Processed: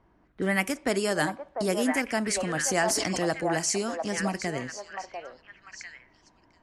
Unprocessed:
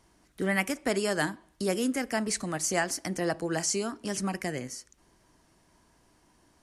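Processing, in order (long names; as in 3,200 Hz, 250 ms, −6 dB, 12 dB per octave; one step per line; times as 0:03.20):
echo through a band-pass that steps 696 ms, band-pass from 780 Hz, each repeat 1.4 octaves, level −1 dB
low-pass that shuts in the quiet parts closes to 1,600 Hz, open at −25 dBFS
0:02.34–0:03.30: level that may fall only so fast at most 22 dB per second
level +1.5 dB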